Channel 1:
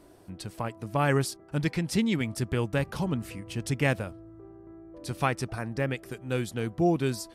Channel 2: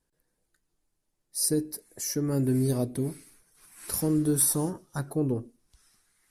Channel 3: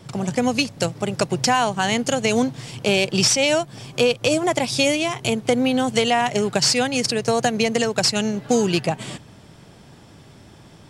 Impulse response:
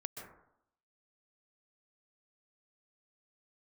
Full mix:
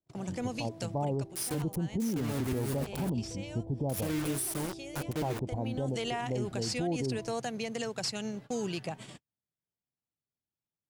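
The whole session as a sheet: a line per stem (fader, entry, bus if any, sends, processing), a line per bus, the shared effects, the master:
+1.0 dB, 0.00 s, no send, steep low-pass 940 Hz 72 dB/oct
-7.5 dB, 0.00 s, no send, notch 3800 Hz; bit-crush 5-bit; backwards sustainer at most 110 dB/s
-13.5 dB, 0.00 s, no send, auto duck -14 dB, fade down 0.25 s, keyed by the second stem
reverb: off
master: gate -45 dBFS, range -40 dB; limiter -24.5 dBFS, peak gain reduction 11.5 dB

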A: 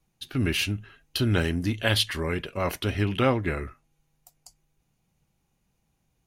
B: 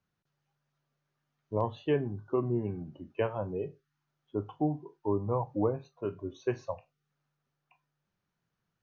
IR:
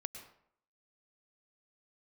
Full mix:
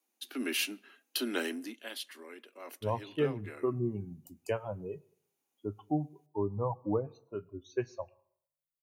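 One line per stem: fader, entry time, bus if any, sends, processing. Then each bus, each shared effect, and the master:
1.53 s -7 dB -> 1.85 s -19.5 dB -> 3.39 s -19.5 dB -> 3.84 s -10 dB, 0.00 s, send -21.5 dB, steep high-pass 230 Hz 72 dB/oct; high shelf 8300 Hz +10.5 dB
-1.5 dB, 1.30 s, send -16 dB, per-bin expansion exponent 1.5; high shelf 8400 Hz +8.5 dB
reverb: on, RT60 0.65 s, pre-delay 98 ms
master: dry

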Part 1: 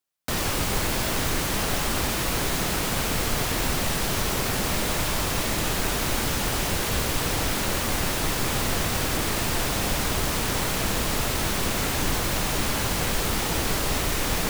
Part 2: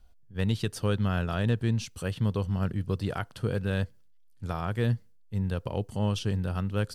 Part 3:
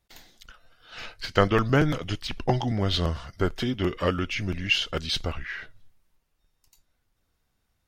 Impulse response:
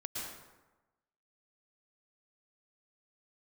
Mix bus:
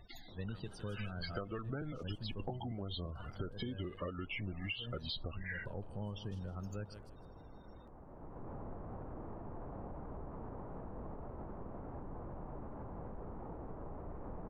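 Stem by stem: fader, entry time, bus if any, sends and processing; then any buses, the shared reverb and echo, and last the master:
-15.0 dB, 0.00 s, no bus, no send, echo send -16 dB, LPF 1000 Hz 24 dB/oct; limiter -23 dBFS, peak gain reduction 7.5 dB; auto duck -11 dB, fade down 0.25 s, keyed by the third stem
-11.5 dB, 0.00 s, bus A, no send, echo send -15.5 dB, dry
-1.5 dB, 0.00 s, bus A, no send, no echo send, upward compressor, threshold -41 dBFS
bus A: 0.0 dB, loudest bins only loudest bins 32; compressor 1.5:1, threshold -38 dBFS, peak gain reduction 8 dB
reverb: off
echo: feedback echo 0.158 s, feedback 22%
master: compressor 16:1, threshold -37 dBFS, peak gain reduction 14.5 dB

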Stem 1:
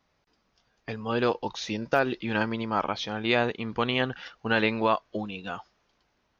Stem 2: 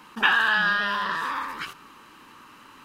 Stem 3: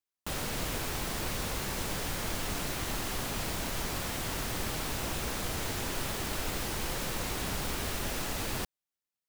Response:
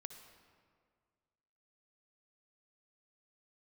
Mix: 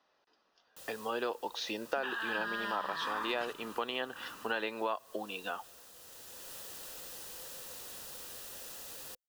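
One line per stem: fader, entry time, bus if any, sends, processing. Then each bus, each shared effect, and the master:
0.0 dB, 0.00 s, send -17.5 dB, three-band isolator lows -24 dB, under 300 Hz, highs -12 dB, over 5700 Hz
-7.5 dB, 1.80 s, no send, expander -46 dBFS; vocal rider
-17.0 dB, 0.50 s, no send, tilt +3 dB/oct; bell 510 Hz +10.5 dB 0.31 oct; auto duck -9 dB, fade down 1.60 s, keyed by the first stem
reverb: on, RT60 1.9 s, pre-delay 54 ms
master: notch 2200 Hz, Q 5.4; compressor 3:1, threshold -34 dBFS, peak gain reduction 12 dB

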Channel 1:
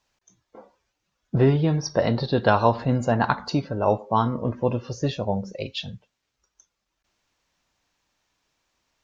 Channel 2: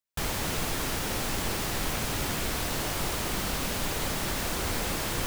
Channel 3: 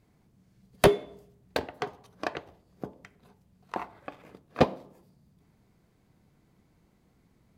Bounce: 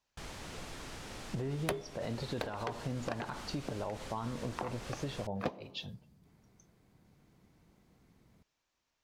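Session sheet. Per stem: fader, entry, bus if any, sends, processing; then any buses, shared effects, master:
-9.5 dB, 0.00 s, bus A, no send, dry
-14.5 dB, 0.00 s, bus A, no send, LPF 7800 Hz 12 dB/oct
-0.5 dB, 0.85 s, no bus, no send, dry
bus A: 0.0 dB, limiter -24.5 dBFS, peak gain reduction 10.5 dB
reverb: off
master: compressor 5:1, threshold -34 dBFS, peak gain reduction 17.5 dB

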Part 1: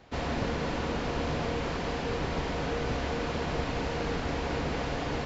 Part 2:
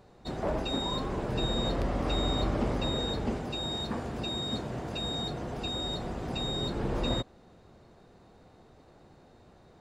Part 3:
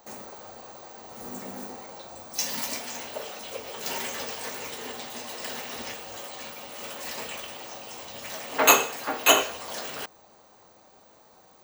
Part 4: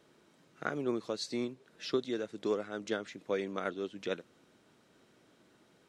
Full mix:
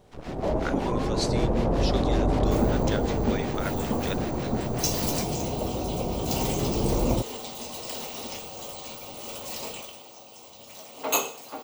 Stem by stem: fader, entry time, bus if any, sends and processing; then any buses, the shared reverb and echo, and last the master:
-2.5 dB, 0.00 s, no send, harmonic tremolo 5.3 Hz, depth 100%, crossover 800 Hz; half-wave rectifier
+0.5 dB, 0.00 s, no send, LPF 1000 Hz 24 dB/oct
9.68 s -4.5 dB -> 10.09 s -12 dB, 2.45 s, no send, bell 1700 Hz -15 dB 0.61 oct
-4.5 dB, 0.00 s, no send, tilt +3 dB/oct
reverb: off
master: AGC gain up to 6 dB

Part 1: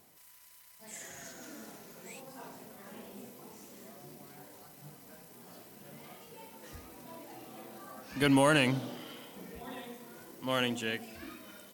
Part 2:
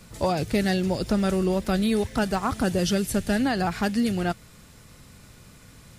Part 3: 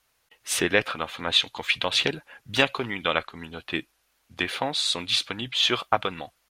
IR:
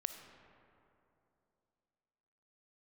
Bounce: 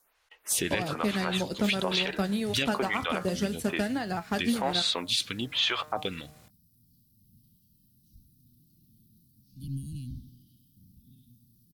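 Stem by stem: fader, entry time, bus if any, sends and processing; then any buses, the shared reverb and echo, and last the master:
-9.5 dB, 1.40 s, no send, octaver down 1 oct, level +1 dB; inverse Chebyshev band-stop 490–2100 Hz, stop band 50 dB; bell 7200 Hz -14 dB 0.64 oct
-2.5 dB, 0.50 s, no send, transient shaper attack +5 dB, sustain -8 dB; flange 0.56 Hz, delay 9.4 ms, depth 7.3 ms, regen +69%; HPF 90 Hz
+2.0 dB, 0.00 s, no send, high shelf 8000 Hz +6 dB; de-hum 152.7 Hz, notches 13; photocell phaser 1.1 Hz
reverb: off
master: limiter -16.5 dBFS, peak gain reduction 10.5 dB

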